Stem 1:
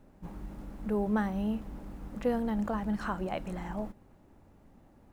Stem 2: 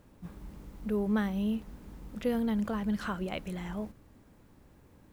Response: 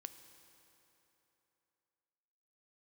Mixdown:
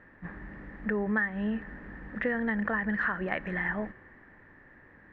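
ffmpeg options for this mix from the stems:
-filter_complex "[0:a]volume=-7.5dB[a];[1:a]lowshelf=f=160:g=-8,volume=-0.5dB,asplit=2[b][c];[c]volume=-4dB[d];[2:a]atrim=start_sample=2205[e];[d][e]afir=irnorm=-1:irlink=0[f];[a][b][f]amix=inputs=3:normalize=0,lowpass=f=1.8k:t=q:w=16,acompressor=threshold=-26dB:ratio=6"

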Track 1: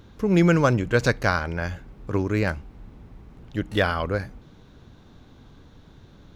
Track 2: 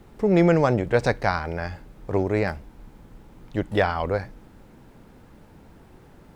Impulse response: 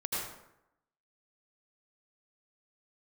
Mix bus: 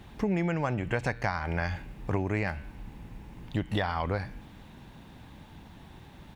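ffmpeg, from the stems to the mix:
-filter_complex "[0:a]equalizer=f=2.5k:t=o:w=1.4:g=14.5,bandreject=f=116.6:t=h:w=4,bandreject=f=233.2:t=h:w=4,bandreject=f=349.8:t=h:w=4,bandreject=f=466.4:t=h:w=4,bandreject=f=583:t=h:w=4,bandreject=f=699.6:t=h:w=4,bandreject=f=816.2:t=h:w=4,bandreject=f=932.8:t=h:w=4,bandreject=f=1.0494k:t=h:w=4,bandreject=f=1.166k:t=h:w=4,bandreject=f=1.2826k:t=h:w=4,bandreject=f=1.3992k:t=h:w=4,bandreject=f=1.5158k:t=h:w=4,bandreject=f=1.6324k:t=h:w=4,bandreject=f=1.749k:t=h:w=4,bandreject=f=1.8656k:t=h:w=4,bandreject=f=1.9822k:t=h:w=4,bandreject=f=2.0988k:t=h:w=4,bandreject=f=2.2154k:t=h:w=4,bandreject=f=2.332k:t=h:w=4,bandreject=f=2.4486k:t=h:w=4,bandreject=f=2.5652k:t=h:w=4,bandreject=f=2.6818k:t=h:w=4,bandreject=f=2.7984k:t=h:w=4,bandreject=f=2.915k:t=h:w=4,bandreject=f=3.0316k:t=h:w=4,bandreject=f=3.1482k:t=h:w=4,bandreject=f=3.2648k:t=h:w=4,bandreject=f=3.3814k:t=h:w=4,bandreject=f=3.498k:t=h:w=4,bandreject=f=3.6146k:t=h:w=4,bandreject=f=3.7312k:t=h:w=4,bandreject=f=3.8478k:t=h:w=4,bandreject=f=3.9644k:t=h:w=4,bandreject=f=4.081k:t=h:w=4,bandreject=f=4.1976k:t=h:w=4,bandreject=f=4.3142k:t=h:w=4,bandreject=f=4.4308k:t=h:w=4,alimiter=limit=-6.5dB:level=0:latency=1:release=299,volume=-8dB[a];[1:a]highpass=40,aecho=1:1:1.1:0.5,adelay=0.3,volume=-1.5dB[b];[a][b]amix=inputs=2:normalize=0,acompressor=threshold=-26dB:ratio=5"

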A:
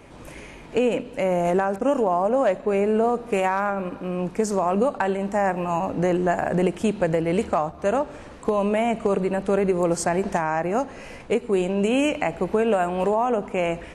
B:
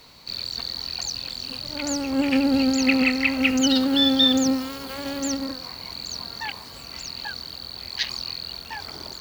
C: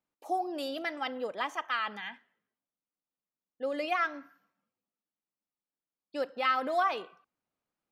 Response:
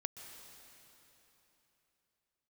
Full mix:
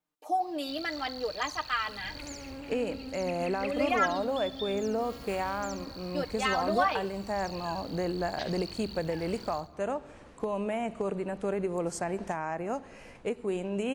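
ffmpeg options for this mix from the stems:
-filter_complex "[0:a]adelay=1950,volume=-10dB[a];[1:a]acompressor=threshold=-25dB:ratio=6,asubboost=boost=6:cutoff=120,adelay=400,volume=-12.5dB,asplit=2[b][c];[c]volume=-9dB[d];[2:a]aecho=1:1:6.6:0.73,volume=-0.5dB[e];[d]aecho=0:1:69|138|207|276:1|0.29|0.0841|0.0244[f];[a][b][e][f]amix=inputs=4:normalize=0"

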